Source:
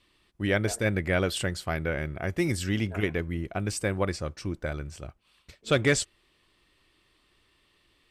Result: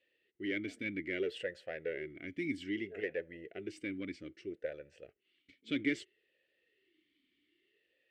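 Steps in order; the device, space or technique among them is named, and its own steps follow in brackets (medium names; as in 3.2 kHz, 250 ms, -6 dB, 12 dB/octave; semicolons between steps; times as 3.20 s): talk box (valve stage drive 17 dB, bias 0.45; talking filter e-i 0.62 Hz); trim +3.5 dB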